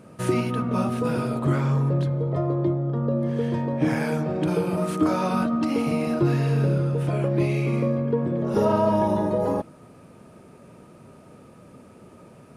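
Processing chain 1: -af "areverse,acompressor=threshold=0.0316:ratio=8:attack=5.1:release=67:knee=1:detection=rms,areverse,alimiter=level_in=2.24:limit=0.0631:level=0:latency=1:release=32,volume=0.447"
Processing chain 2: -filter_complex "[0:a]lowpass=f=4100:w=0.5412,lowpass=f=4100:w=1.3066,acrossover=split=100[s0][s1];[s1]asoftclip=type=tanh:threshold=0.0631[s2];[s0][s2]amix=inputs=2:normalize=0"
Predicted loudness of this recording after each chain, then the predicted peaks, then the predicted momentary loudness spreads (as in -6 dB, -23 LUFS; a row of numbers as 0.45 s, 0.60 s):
-39.5 LUFS, -27.5 LUFS; -31.0 dBFS, -19.5 dBFS; 11 LU, 3 LU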